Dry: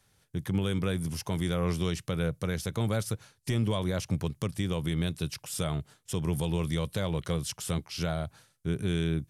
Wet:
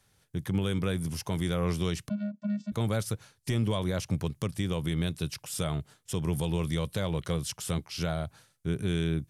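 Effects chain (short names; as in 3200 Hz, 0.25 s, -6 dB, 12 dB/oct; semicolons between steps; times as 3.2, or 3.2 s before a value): 2.09–2.72 vocoder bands 16, square 206 Hz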